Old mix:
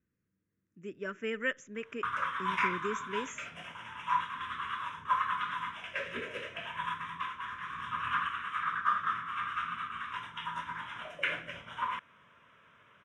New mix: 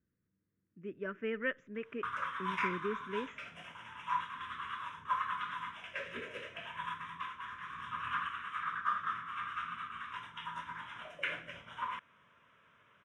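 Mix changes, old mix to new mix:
speech: add distance through air 380 m; background -4.5 dB

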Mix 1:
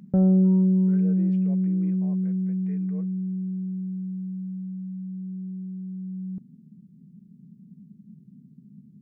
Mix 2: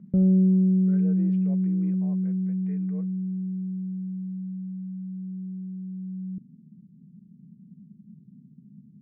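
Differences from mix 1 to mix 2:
speech: add distance through air 120 m; background: add boxcar filter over 52 samples

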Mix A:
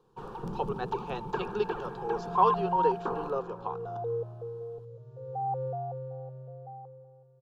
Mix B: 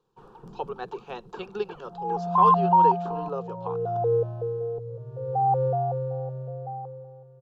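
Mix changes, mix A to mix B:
first sound -6.0 dB; second sound +9.5 dB; reverb: off

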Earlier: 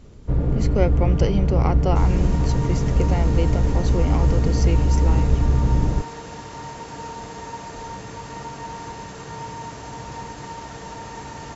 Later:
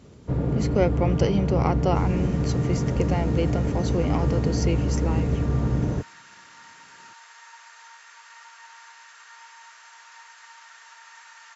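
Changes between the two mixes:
second sound: add ladder high-pass 1.2 kHz, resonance 40%; master: add high-pass 100 Hz 12 dB/octave

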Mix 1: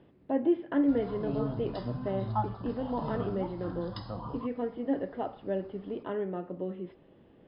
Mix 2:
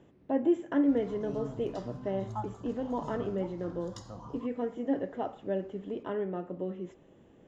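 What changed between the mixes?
background -6.5 dB; master: remove brick-wall FIR low-pass 5.2 kHz

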